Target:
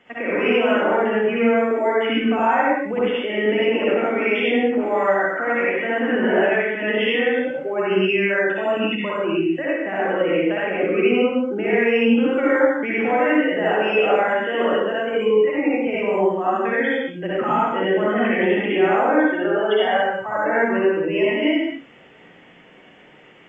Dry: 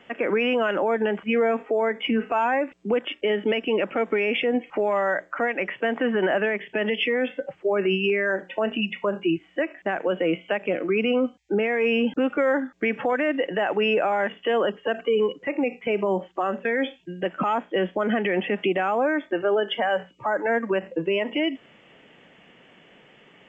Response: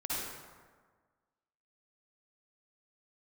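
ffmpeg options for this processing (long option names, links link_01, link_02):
-filter_complex "[0:a]equalizer=frequency=2000:width=7.4:gain=4[link_01];[1:a]atrim=start_sample=2205,afade=type=out:start_time=0.35:duration=0.01,atrim=end_sample=15876[link_02];[link_01][link_02]afir=irnorm=-1:irlink=0"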